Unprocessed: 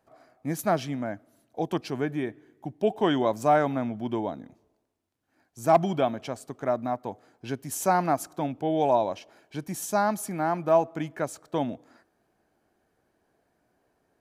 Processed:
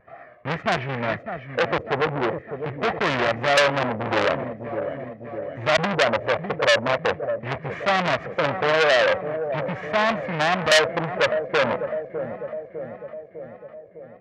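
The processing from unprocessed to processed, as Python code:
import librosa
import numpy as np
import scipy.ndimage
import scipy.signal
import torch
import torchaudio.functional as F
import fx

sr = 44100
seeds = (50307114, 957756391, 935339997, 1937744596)

p1 = fx.block_float(x, sr, bits=3)
p2 = scipy.signal.sosfilt(scipy.signal.butter(4, 63.0, 'highpass', fs=sr, output='sos'), p1)
p3 = p2 + 0.57 * np.pad(p2, (int(1.7 * sr / 1000.0), 0))[:len(p2)]
p4 = fx.wow_flutter(p3, sr, seeds[0], rate_hz=2.1, depth_cents=98.0)
p5 = fx.filter_lfo_lowpass(p4, sr, shape='square', hz=0.42, low_hz=530.0, high_hz=2000.0, q=4.9)
p6 = fx.over_compress(p5, sr, threshold_db=-23.0, ratio=-0.5)
p7 = p5 + (p6 * 10.0 ** (-2.0 / 20.0))
p8 = fx.spacing_loss(p7, sr, db_at_10k=28)
p9 = fx.echo_feedback(p8, sr, ms=604, feedback_pct=58, wet_db=-13.0)
p10 = fx.transformer_sat(p9, sr, knee_hz=3700.0)
y = p10 * 10.0 ** (2.5 / 20.0)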